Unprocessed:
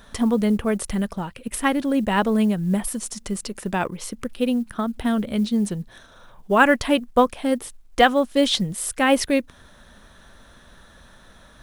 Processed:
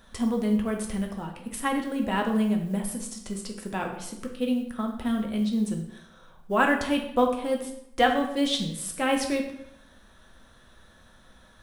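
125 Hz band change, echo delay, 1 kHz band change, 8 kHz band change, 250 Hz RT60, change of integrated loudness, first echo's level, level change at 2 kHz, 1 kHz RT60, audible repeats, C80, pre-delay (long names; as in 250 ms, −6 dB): −5.5 dB, no echo audible, −5.0 dB, −6.0 dB, 0.85 s, −5.5 dB, no echo audible, −6.0 dB, 0.75 s, no echo audible, 10.0 dB, 3 ms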